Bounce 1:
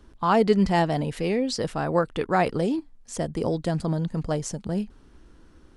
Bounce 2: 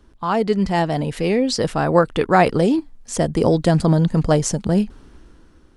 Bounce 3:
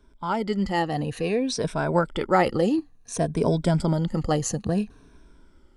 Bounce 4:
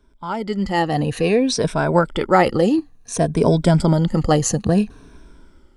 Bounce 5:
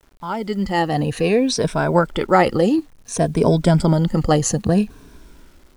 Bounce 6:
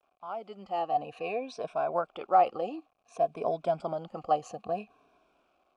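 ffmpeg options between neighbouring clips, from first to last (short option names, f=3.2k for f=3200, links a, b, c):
-af "dynaudnorm=f=210:g=9:m=11.5dB"
-af "afftfilt=real='re*pow(10,11/40*sin(2*PI*(1.6*log(max(b,1)*sr/1024/100)/log(2)-(-0.57)*(pts-256)/sr)))':imag='im*pow(10,11/40*sin(2*PI*(1.6*log(max(b,1)*sr/1024/100)/log(2)-(-0.57)*(pts-256)/sr)))':win_size=1024:overlap=0.75,volume=-7dB"
-af "dynaudnorm=f=320:g=5:m=9dB"
-af "acrusher=bits=8:mix=0:aa=0.000001"
-filter_complex "[0:a]asplit=3[a][b][c];[a]bandpass=f=730:t=q:w=8,volume=0dB[d];[b]bandpass=f=1.09k:t=q:w=8,volume=-6dB[e];[c]bandpass=f=2.44k:t=q:w=8,volume=-9dB[f];[d][e][f]amix=inputs=3:normalize=0,volume=-1.5dB"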